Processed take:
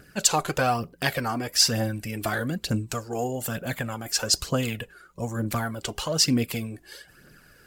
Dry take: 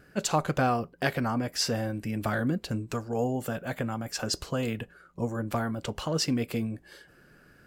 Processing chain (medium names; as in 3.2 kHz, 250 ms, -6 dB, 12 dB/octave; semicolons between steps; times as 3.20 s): phaser 1.1 Hz, delay 3 ms, feedback 49%; treble shelf 2.8 kHz +10.5 dB